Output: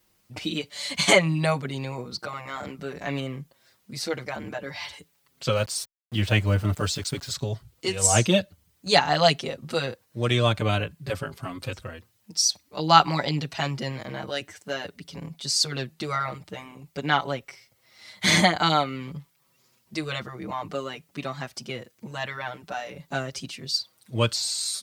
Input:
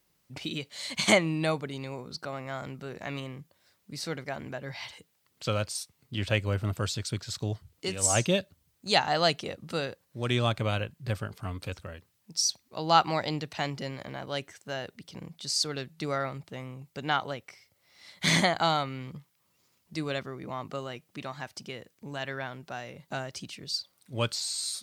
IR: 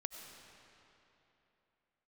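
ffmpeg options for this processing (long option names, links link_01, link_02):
-filter_complex "[0:a]asettb=1/sr,asplit=3[link_01][link_02][link_03];[link_01]atrim=end=5.564[link_04];[link_02]atrim=start=5.56:end=7.34,asetpts=PTS-STARTPTS,afade=type=in:duration=0.004:curve=qsin,afade=type=out:start_time=1.776:duration=0.004:curve=qsin,aeval=exprs='val(0)*gte(abs(val(0)),0.00531)':channel_layout=same[link_05];[link_03]atrim=start=7.336[link_06];[link_04][link_05]acrossfade=duration=0.004:curve1=hsin:curve2=qsin[link_07];[link_07][link_06]acrossfade=duration=0.004:curve1=qsin:curve2=hsin,asplit=2[link_08][link_09];[link_09]adelay=5.9,afreqshift=-0.5[link_10];[link_08][link_10]amix=inputs=2:normalize=1,volume=8dB"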